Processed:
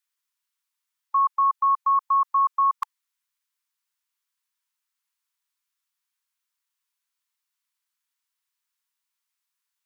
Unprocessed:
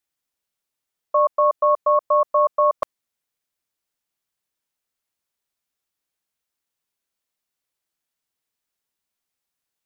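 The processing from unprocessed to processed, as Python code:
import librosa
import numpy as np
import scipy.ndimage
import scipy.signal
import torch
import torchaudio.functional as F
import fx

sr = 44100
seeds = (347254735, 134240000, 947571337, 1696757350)

y = fx.brickwall_highpass(x, sr, low_hz=870.0)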